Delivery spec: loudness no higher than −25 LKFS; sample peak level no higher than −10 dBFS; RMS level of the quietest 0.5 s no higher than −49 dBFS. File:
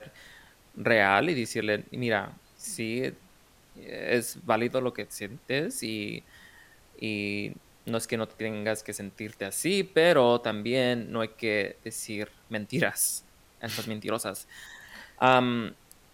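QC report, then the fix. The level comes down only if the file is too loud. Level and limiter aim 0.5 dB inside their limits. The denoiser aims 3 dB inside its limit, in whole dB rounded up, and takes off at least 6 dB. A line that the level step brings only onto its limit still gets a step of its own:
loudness −28.5 LKFS: in spec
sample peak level −6.0 dBFS: out of spec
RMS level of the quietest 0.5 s −58 dBFS: in spec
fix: brickwall limiter −10.5 dBFS

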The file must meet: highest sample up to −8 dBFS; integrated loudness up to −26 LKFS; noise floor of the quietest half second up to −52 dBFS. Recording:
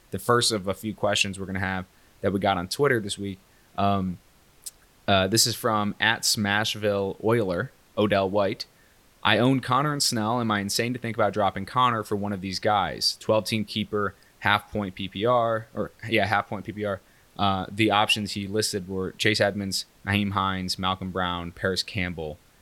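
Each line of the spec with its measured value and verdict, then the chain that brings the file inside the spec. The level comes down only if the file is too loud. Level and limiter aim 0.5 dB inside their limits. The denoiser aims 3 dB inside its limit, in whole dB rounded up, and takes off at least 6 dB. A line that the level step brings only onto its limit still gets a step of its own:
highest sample −3.5 dBFS: out of spec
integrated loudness −25.0 LKFS: out of spec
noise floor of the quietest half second −58 dBFS: in spec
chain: level −1.5 dB
brickwall limiter −8.5 dBFS

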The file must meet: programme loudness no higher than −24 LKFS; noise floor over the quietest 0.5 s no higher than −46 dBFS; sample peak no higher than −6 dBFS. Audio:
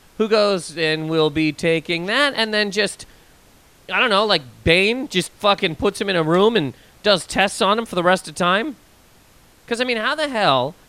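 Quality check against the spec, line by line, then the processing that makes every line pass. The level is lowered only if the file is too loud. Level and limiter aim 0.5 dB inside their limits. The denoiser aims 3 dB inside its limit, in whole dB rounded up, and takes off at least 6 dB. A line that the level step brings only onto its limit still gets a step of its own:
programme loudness −18.5 LKFS: out of spec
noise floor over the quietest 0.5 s −51 dBFS: in spec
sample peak −1.5 dBFS: out of spec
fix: level −6 dB

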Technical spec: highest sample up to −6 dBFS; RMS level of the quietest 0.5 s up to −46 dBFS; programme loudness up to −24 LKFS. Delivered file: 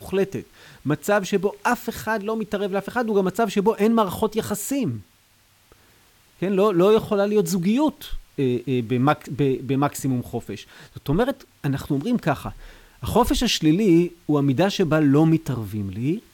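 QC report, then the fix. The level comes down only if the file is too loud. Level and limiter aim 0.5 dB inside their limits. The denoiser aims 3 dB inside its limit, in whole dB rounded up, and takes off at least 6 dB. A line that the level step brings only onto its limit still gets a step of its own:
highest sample −7.0 dBFS: in spec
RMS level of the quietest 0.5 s −58 dBFS: in spec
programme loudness −22.0 LKFS: out of spec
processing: level −2.5 dB

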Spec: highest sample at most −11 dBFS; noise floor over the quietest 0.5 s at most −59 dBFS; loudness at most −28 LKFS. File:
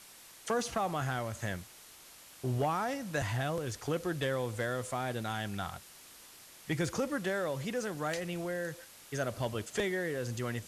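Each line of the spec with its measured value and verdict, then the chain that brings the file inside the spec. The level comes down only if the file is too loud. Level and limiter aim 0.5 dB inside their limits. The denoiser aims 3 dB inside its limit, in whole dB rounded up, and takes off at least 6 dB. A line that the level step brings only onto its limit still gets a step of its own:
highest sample −22.0 dBFS: in spec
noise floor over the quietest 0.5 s −54 dBFS: out of spec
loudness −35.0 LKFS: in spec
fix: broadband denoise 8 dB, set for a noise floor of −54 dBFS

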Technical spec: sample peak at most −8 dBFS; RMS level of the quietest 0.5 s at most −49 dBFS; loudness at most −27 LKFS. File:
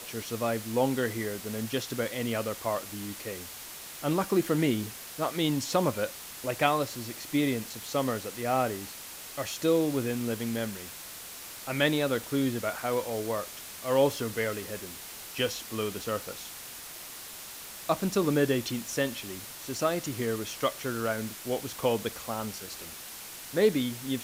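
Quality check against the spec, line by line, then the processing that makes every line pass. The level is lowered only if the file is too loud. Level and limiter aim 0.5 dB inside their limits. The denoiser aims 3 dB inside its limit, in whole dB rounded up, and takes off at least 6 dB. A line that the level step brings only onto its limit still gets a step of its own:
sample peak −9.0 dBFS: in spec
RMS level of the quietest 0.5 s −43 dBFS: out of spec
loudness −31.0 LKFS: in spec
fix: broadband denoise 9 dB, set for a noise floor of −43 dBFS

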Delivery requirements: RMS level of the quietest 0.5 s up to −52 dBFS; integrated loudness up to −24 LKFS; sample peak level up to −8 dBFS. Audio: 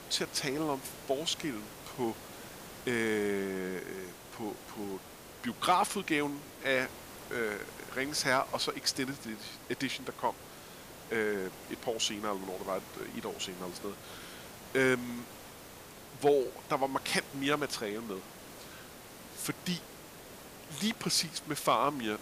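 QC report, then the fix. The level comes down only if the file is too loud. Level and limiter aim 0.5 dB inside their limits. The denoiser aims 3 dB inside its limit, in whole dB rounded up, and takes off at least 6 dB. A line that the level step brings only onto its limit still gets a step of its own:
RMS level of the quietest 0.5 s −50 dBFS: out of spec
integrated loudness −33.5 LKFS: in spec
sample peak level −15.0 dBFS: in spec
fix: broadband denoise 6 dB, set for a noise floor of −50 dBFS

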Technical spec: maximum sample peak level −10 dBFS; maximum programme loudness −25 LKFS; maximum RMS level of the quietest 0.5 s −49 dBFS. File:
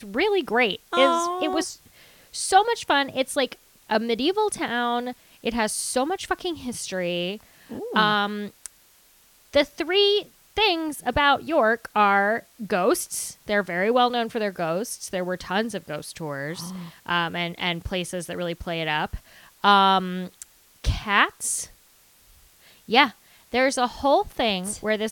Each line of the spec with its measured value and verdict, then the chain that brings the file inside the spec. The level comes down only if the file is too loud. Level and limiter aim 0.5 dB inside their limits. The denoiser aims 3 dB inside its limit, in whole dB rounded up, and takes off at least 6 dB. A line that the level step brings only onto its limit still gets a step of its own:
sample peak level −2.0 dBFS: out of spec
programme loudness −23.5 LKFS: out of spec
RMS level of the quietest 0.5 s −57 dBFS: in spec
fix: level −2 dB
brickwall limiter −10.5 dBFS

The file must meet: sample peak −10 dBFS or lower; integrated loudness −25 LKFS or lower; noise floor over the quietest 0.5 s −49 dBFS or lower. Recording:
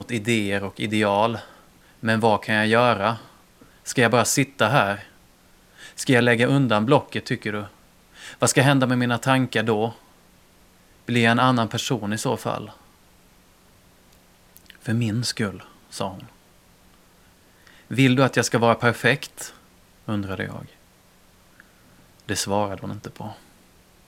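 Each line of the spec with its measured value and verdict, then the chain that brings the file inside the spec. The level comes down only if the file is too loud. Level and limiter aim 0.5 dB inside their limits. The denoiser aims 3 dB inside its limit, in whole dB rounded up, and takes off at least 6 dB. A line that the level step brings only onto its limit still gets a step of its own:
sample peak −2.0 dBFS: out of spec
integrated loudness −21.5 LKFS: out of spec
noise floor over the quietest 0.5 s −55 dBFS: in spec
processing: level −4 dB
brickwall limiter −10.5 dBFS

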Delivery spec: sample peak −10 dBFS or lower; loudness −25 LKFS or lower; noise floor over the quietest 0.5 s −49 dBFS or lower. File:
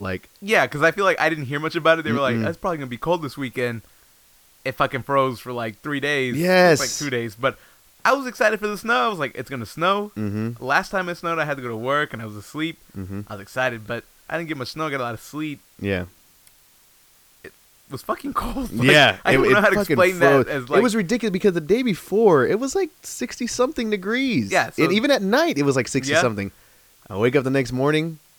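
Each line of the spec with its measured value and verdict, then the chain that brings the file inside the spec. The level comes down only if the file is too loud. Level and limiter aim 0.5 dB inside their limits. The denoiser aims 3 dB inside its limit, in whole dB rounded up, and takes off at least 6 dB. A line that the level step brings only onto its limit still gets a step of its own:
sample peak −5.0 dBFS: out of spec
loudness −21.0 LKFS: out of spec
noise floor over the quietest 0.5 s −55 dBFS: in spec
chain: level −4.5 dB
brickwall limiter −10.5 dBFS

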